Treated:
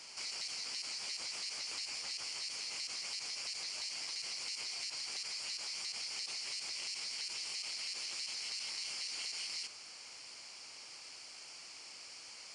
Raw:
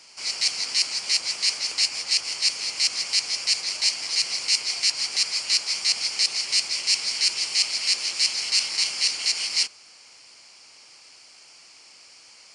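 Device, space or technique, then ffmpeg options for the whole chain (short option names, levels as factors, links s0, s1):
de-esser from a sidechain: -filter_complex "[0:a]asplit=2[s0][s1];[s1]highpass=f=4100:w=0.5412,highpass=f=4100:w=1.3066,apad=whole_len=553247[s2];[s0][s2]sidechaincompress=threshold=0.01:ratio=8:attack=2.7:release=25,volume=0.841"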